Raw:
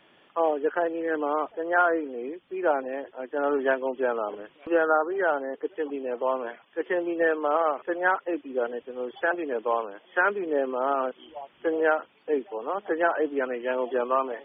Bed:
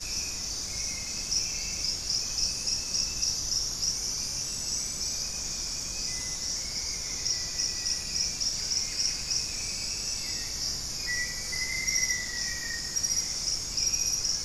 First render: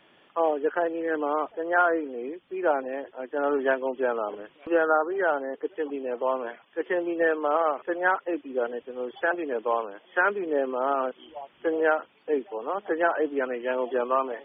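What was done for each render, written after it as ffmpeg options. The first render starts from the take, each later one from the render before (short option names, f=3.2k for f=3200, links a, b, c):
-af anull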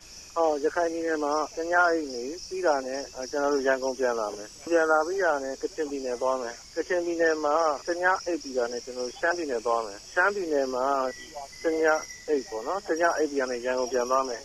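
-filter_complex "[1:a]volume=-13.5dB[a];[0:a][a]amix=inputs=2:normalize=0"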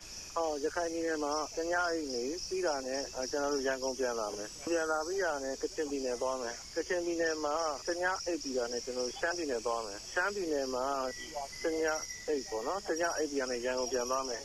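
-filter_complex "[0:a]acrossover=split=160|3000[a][b][c];[b]acompressor=threshold=-33dB:ratio=3[d];[a][d][c]amix=inputs=3:normalize=0"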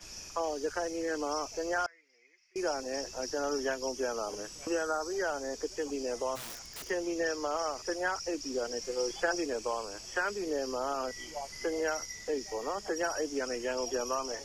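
-filter_complex "[0:a]asettb=1/sr,asplit=3[a][b][c];[a]atrim=end=1.864[d];[b]atrim=start=1.86:end=2.56,asetpts=PTS-STARTPTS,afade=t=in:d=0.004:c=qsin,afade=t=out:st=0.696:d=0.004:c=qsin,bandpass=f=2.1k:t=q:w=14[e];[c]atrim=start=2.556[f];[d][e]acrossfade=d=0.004:c1=hsin:c2=qsin[g];[g][f]acrossfade=d=0.004:c1=qsin:c2=hsin,asplit=3[h][i][j];[h]afade=t=out:st=6.35:d=0.02[k];[i]aeval=exprs='(mod(70.8*val(0)+1,2)-1)/70.8':c=same,afade=t=in:st=6.35:d=0.02,afade=t=out:st=6.88:d=0.02[l];[j]afade=t=in:st=6.88:d=0.02[m];[k][l][m]amix=inputs=3:normalize=0,asettb=1/sr,asplit=3[n][o][p];[n]atrim=end=8.814[q];[o]atrim=start=8.81:end=9.46,asetpts=PTS-STARTPTS,afade=t=in:d=0.004:c=qsin,afade=t=out:st=0.646:d=0.004:c=qsin,aecho=1:1:5.8:0.65,atrim=end_sample=28665[r];[p]atrim=start=9.456[s];[q][r]acrossfade=d=0.004:c1=hsin:c2=qsin[t];[t][s]acrossfade=d=0.004:c1=qsin:c2=hsin"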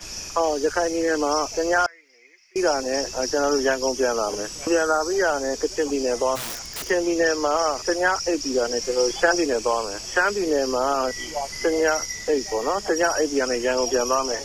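-af "volume=11.5dB"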